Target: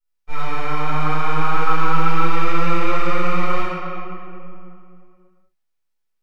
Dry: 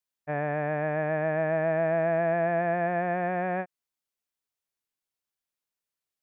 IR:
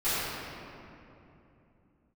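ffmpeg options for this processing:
-filter_complex "[0:a]highpass=f=240:p=1,aeval=exprs='abs(val(0))':c=same[a];[1:a]atrim=start_sample=2205,asetrate=48510,aresample=44100[b];[a][b]afir=irnorm=-1:irlink=0,volume=-2.5dB"

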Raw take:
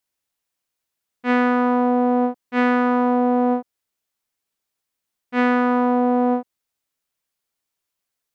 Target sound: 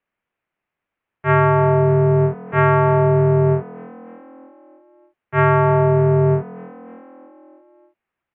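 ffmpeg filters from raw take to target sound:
-filter_complex "[0:a]highpass=f=370:t=q:w=0.5412,highpass=f=370:t=q:w=1.307,lowpass=f=2.9k:t=q:w=0.5176,lowpass=f=2.9k:t=q:w=0.7071,lowpass=f=2.9k:t=q:w=1.932,afreqshift=-350,asplit=6[a][b][c][d][e][f];[b]adelay=302,afreqshift=42,volume=-22.5dB[g];[c]adelay=604,afreqshift=84,volume=-26.2dB[h];[d]adelay=906,afreqshift=126,volume=-30dB[i];[e]adelay=1208,afreqshift=168,volume=-33.7dB[j];[f]adelay=1510,afreqshift=210,volume=-37.5dB[k];[a][g][h][i][j][k]amix=inputs=6:normalize=0,volume=7dB"

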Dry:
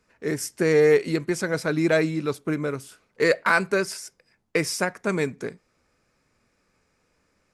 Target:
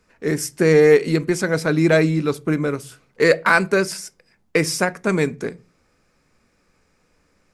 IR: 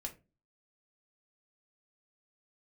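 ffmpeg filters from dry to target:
-filter_complex "[0:a]asplit=2[a][b];[1:a]atrim=start_sample=2205,lowshelf=f=310:g=10[c];[b][c]afir=irnorm=-1:irlink=0,volume=-10.5dB[d];[a][d]amix=inputs=2:normalize=0,volume=3dB"

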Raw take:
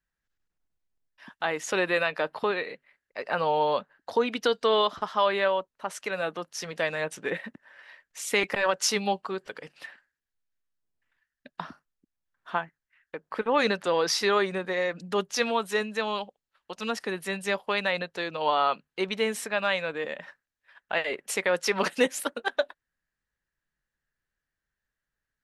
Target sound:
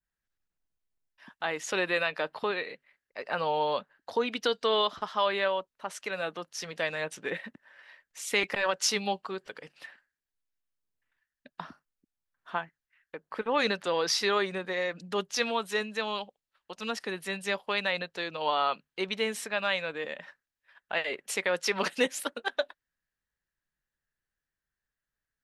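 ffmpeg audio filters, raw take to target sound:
-af "adynamicequalizer=threshold=0.01:dfrequency=3700:dqfactor=0.72:tfrequency=3700:tqfactor=0.72:attack=5:release=100:ratio=0.375:range=2:mode=boostabove:tftype=bell,volume=-4dB"

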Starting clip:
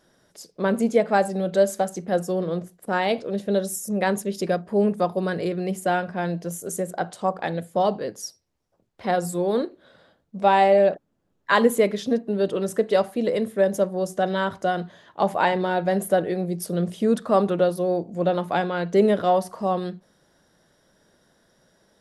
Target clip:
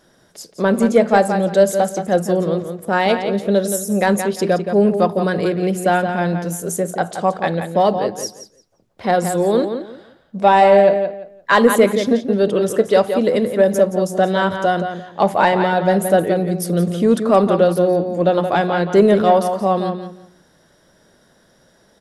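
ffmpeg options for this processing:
-filter_complex "[0:a]asplit=2[a][b];[b]adelay=173,lowpass=f=4.6k:p=1,volume=-8dB,asplit=2[c][d];[d]adelay=173,lowpass=f=4.6k:p=1,volume=0.23,asplit=2[e][f];[f]adelay=173,lowpass=f=4.6k:p=1,volume=0.23[g];[a][c][e][g]amix=inputs=4:normalize=0,acontrast=43,volume=1dB"

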